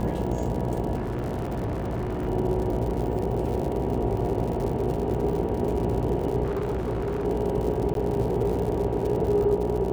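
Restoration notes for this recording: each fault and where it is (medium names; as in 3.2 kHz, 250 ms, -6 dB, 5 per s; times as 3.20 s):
buzz 60 Hz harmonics 16 -30 dBFS
crackle 97 per s -31 dBFS
0.95–2.29 s: clipped -25 dBFS
2.90 s: dropout 2.3 ms
6.43–7.26 s: clipped -24 dBFS
7.94–7.95 s: dropout 12 ms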